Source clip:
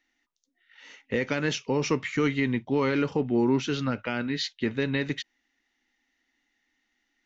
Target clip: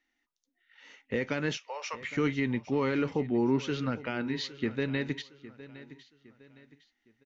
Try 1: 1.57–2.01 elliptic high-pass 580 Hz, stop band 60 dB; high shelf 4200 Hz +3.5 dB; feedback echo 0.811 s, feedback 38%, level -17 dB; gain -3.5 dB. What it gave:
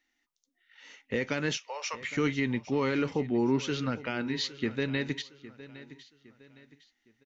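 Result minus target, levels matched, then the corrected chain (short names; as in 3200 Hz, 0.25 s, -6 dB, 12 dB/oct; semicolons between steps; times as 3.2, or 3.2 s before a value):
8000 Hz band +5.5 dB
1.57–2.01 elliptic high-pass 580 Hz, stop band 60 dB; high shelf 4200 Hz -5 dB; feedback echo 0.811 s, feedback 38%, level -17 dB; gain -3.5 dB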